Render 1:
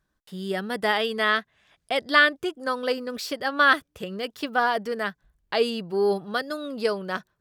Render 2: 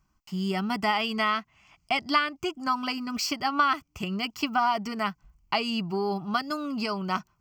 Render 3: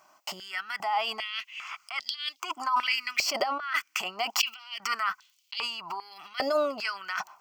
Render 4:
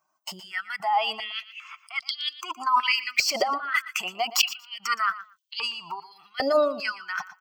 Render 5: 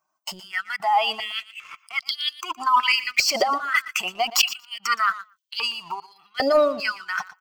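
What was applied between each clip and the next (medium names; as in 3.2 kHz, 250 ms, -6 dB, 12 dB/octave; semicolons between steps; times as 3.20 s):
compression 3:1, threshold -25 dBFS, peak gain reduction 10 dB; static phaser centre 2.5 kHz, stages 8; trim +7 dB
compressor with a negative ratio -37 dBFS, ratio -1; step-sequenced high-pass 2.5 Hz 610–3500 Hz; trim +6.5 dB
expander on every frequency bin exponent 1.5; feedback delay 118 ms, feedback 15%, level -15.5 dB; trim +6 dB
waveshaping leveller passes 1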